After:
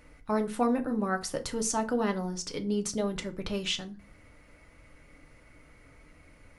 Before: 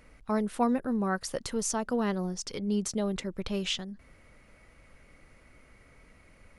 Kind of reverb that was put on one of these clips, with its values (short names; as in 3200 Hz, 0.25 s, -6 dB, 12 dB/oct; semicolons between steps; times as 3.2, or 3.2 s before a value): FDN reverb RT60 0.33 s, low-frequency decay 1.5×, high-frequency decay 0.75×, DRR 5.5 dB